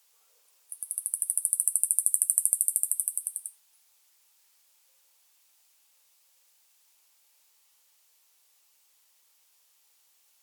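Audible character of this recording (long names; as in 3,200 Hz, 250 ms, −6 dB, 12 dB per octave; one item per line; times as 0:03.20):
background noise floor −66 dBFS
spectral slope +7.5 dB per octave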